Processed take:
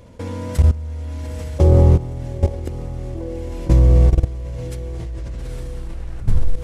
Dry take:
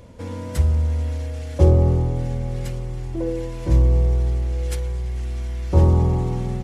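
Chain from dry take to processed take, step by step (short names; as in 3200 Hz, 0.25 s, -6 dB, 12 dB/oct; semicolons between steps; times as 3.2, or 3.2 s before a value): tape stop at the end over 1.70 s; diffused feedback echo 0.901 s, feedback 52%, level -6 dB; level quantiser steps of 17 dB; gain +7 dB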